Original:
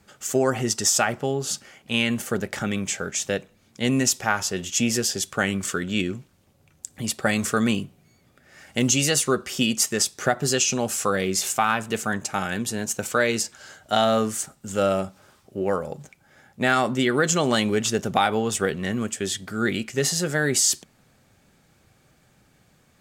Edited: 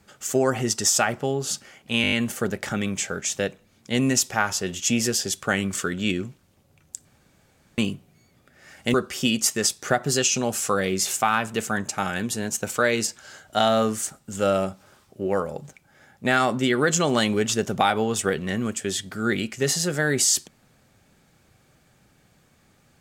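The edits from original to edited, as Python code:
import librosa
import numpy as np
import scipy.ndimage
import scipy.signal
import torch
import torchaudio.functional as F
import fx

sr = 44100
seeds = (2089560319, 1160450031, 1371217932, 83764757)

y = fx.edit(x, sr, fx.stutter(start_s=2.02, slice_s=0.02, count=6),
    fx.room_tone_fill(start_s=6.95, length_s=0.73),
    fx.cut(start_s=8.84, length_s=0.46), tone=tone)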